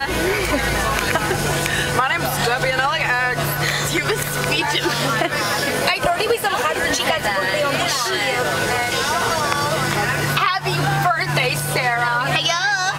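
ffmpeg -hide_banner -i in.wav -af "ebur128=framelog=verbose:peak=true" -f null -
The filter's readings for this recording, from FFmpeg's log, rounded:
Integrated loudness:
  I:         -18.5 LUFS
  Threshold: -28.5 LUFS
Loudness range:
  LRA:         0.4 LU
  Threshold: -38.6 LUFS
  LRA low:   -18.7 LUFS
  LRA high:  -18.4 LUFS
True peak:
  Peak:       -3.7 dBFS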